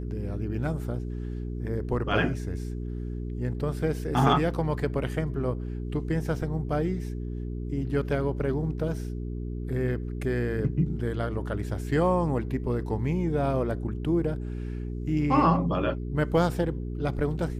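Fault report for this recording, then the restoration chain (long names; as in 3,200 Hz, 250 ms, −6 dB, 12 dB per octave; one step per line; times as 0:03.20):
mains hum 60 Hz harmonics 7 −33 dBFS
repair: hum removal 60 Hz, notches 7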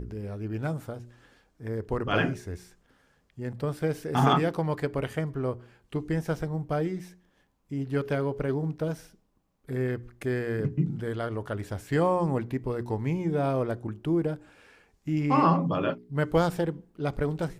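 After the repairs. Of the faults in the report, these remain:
none of them is left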